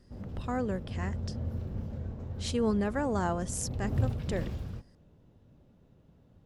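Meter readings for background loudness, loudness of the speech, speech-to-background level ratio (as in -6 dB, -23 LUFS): -37.5 LUFS, -34.0 LUFS, 3.5 dB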